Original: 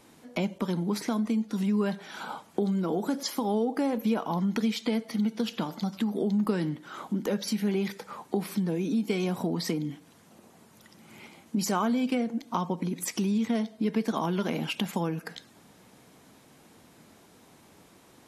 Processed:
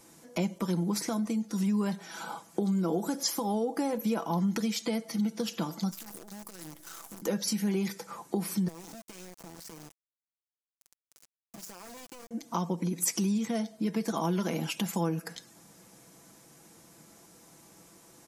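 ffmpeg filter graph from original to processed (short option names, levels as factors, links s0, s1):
-filter_complex "[0:a]asettb=1/sr,asplit=3[s0][s1][s2];[s0]atrim=end=5.914[s3];[s1]atrim=start=5.91:end=7.22,asetpts=PTS-STARTPTS,afade=t=in:d=0.004:c=qsin,afade=t=out:st=1.306:d=0.004:c=qsin,aemphasis=mode=production:type=bsi,acompressor=threshold=0.00794:ratio=16:attack=3.2:release=140:knee=1:detection=peak,acrusher=bits=8:dc=4:mix=0:aa=0.000001[s4];[s2]atrim=start=7.216[s5];[s3][s4]acrossfade=d=0.004:c1=hsin:c2=qsin[s6];[s6][s5]acrossfade=d=0.004:c1=qsin:c2=hsin,asettb=1/sr,asplit=3[s7][s8][s9];[s7]atrim=end=8.684[s10];[s8]atrim=start=8.68:end=12.31,asetpts=PTS-STARTPTS,afade=t=in:d=0.004:c=qsin,afade=t=out:st=3.626:d=0.004:c=qsin,highpass=110,acompressor=threshold=0.00631:ratio=4:attack=3.2:release=140:knee=1:detection=peak,aeval=exprs='val(0)*gte(abs(val(0)),0.00944)':c=same[s11];[s9]atrim=start=12.306[s12];[s10][s11]acrossfade=d=0.004:c1=hsin:c2=qsin[s13];[s13][s12]acrossfade=d=0.004:c1=qsin:c2=hsin,highshelf=f=4700:t=q:w=1.5:g=6.5,aecho=1:1:6:0.45,volume=0.75"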